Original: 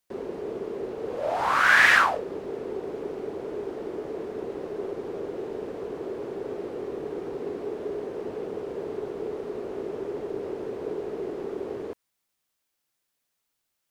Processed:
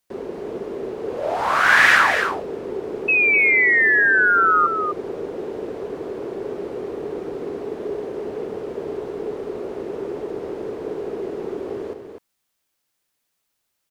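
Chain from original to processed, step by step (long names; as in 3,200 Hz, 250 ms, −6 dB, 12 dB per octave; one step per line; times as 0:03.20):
sound drawn into the spectrogram fall, 0:03.08–0:04.67, 1,200–2,600 Hz −20 dBFS
single-tap delay 251 ms −7 dB
level +3.5 dB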